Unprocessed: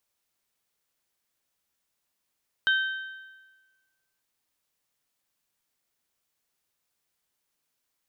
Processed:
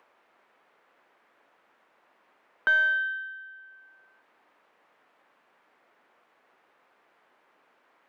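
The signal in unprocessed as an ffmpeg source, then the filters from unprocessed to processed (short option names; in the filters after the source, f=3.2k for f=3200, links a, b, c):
-f lavfi -i "aevalsrc='0.112*pow(10,-3*t/1.33)*sin(2*PI*1550*t)+0.0531*pow(10,-3*t/1.08)*sin(2*PI*3100*t)+0.0251*pow(10,-3*t/1.023)*sin(2*PI*3720*t)':d=1.55:s=44100"
-filter_complex "[0:a]asplit=2[a][b];[b]acompressor=mode=upward:threshold=-45dB:ratio=2.5,volume=0dB[c];[a][c]amix=inputs=2:normalize=0,asplit=2[d][e];[e]highpass=f=720:p=1,volume=16dB,asoftclip=type=tanh:threshold=-9.5dB[f];[d][f]amix=inputs=2:normalize=0,lowpass=f=1k:p=1,volume=-6dB,acrossover=split=200 2500:gain=0.141 1 0.1[g][h][i];[g][h][i]amix=inputs=3:normalize=0"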